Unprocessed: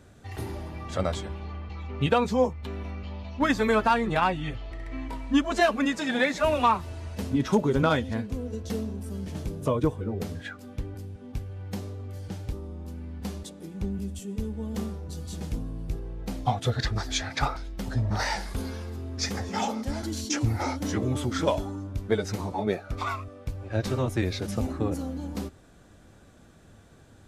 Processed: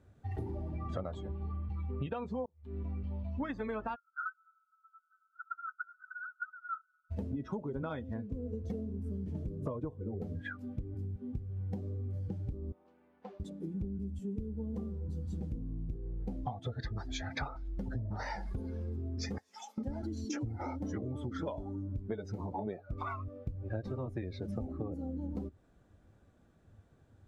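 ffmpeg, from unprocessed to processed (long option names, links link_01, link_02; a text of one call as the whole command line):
ffmpeg -i in.wav -filter_complex "[0:a]asplit=3[link_01][link_02][link_03];[link_01]afade=type=out:start_time=3.94:duration=0.02[link_04];[link_02]asuperpass=centerf=1400:order=20:qfactor=5.4,afade=type=in:start_time=3.94:duration=0.02,afade=type=out:start_time=7.1:duration=0.02[link_05];[link_03]afade=type=in:start_time=7.1:duration=0.02[link_06];[link_04][link_05][link_06]amix=inputs=3:normalize=0,asettb=1/sr,asplit=3[link_07][link_08][link_09];[link_07]atrim=end=12.724[link_10];[link_08]atrim=start=12.72:end=13.4,asetpts=PTS-STARTPTS,afade=type=in:duration=0.004:curve=qsin,afade=type=out:start_time=0.676:duration=0.004:curve=qsin,highpass=550,lowpass=2900[link_11];[link_09]atrim=start=13.396[link_12];[link_10][link_11]acrossfade=duration=0.004:curve1=hsin:curve2=qsin[link_13];[link_13][link_12]acrossfade=duration=0.004:curve1=qsin:curve2=hsin,asettb=1/sr,asplit=3[link_14][link_15][link_16];[link_14]atrim=end=19.384[link_17];[link_15]atrim=start=19.38:end=19.78,asetpts=PTS-STARTPTS,afade=type=in:duration=0.004:curve=qsin,afade=type=out:start_time=0.396:duration=0.004:curve=qsin,aderivative[link_18];[link_16]atrim=start=19.776[link_19];[link_17][link_18]acrossfade=duration=0.004:curve1=hsin:curve2=qsin[link_20];[link_20][link_19]acrossfade=duration=0.004:curve1=qsin:curve2=hsin,asplit=2[link_21][link_22];[link_21]atrim=end=2.46,asetpts=PTS-STARTPTS,afade=type=out:start_time=2.456:duration=0.004:curve=hsin[link_23];[link_22]atrim=start=2.46,asetpts=PTS-STARTPTS,afade=type=in:duration=0.53[link_24];[link_23][link_24]concat=n=2:v=0:a=1,afftdn=noise_reduction=15:noise_floor=-35,highshelf=frequency=2400:gain=-10,acompressor=threshold=-38dB:ratio=12,volume=3.5dB" out.wav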